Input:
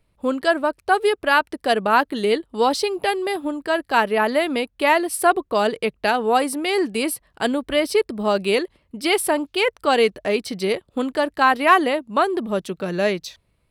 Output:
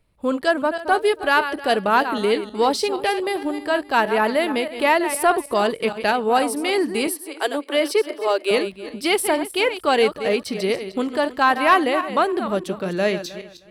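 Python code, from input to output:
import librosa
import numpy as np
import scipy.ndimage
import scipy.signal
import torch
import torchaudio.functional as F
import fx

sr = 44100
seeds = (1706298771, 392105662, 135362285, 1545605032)

y = fx.reverse_delay_fb(x, sr, ms=156, feedback_pct=42, wet_db=-10.5)
y = fx.steep_highpass(y, sr, hz=290.0, slope=72, at=(7.07, 8.51))
y = 10.0 ** (-4.0 / 20.0) * np.tanh(y / 10.0 ** (-4.0 / 20.0))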